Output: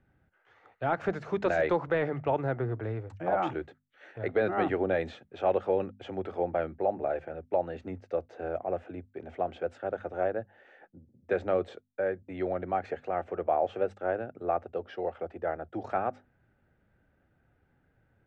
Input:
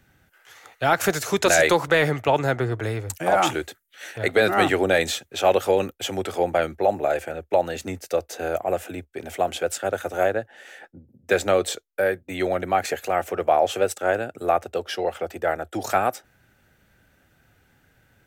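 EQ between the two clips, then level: tape spacing loss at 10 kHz 35 dB; treble shelf 3.4 kHz -8.5 dB; hum notches 50/100/150/200/250 Hz; -5.5 dB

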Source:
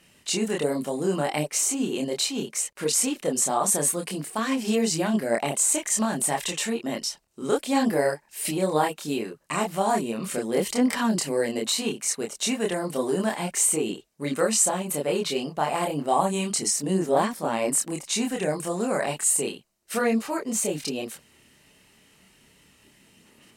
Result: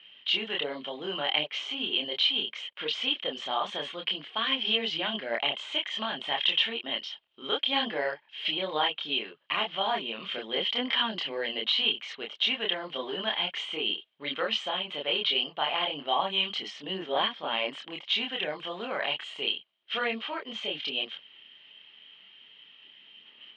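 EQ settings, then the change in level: high-pass 1.2 kHz 6 dB/octave; resonant low-pass 3.2 kHz, resonance Q 13; distance through air 250 m; 0.0 dB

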